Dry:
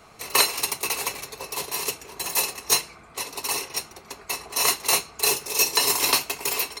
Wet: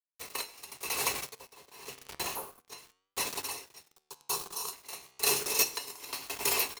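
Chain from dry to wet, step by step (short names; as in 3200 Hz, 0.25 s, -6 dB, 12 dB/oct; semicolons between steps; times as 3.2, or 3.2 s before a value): 1.48–2.78 high shelf 5900 Hz -9 dB; on a send: echo 96 ms -19 dB; on the sum: bit-crush 6-bit; 2.31–2.58 spectral repair 1600–9200 Hz both; 3.93–4.73 fixed phaser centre 410 Hz, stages 8; in parallel at -9 dB: companded quantiser 2-bit; on the sum: flange 0.31 Hz, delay 9.8 ms, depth 6.9 ms, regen +84%; dB-linear tremolo 0.92 Hz, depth 22 dB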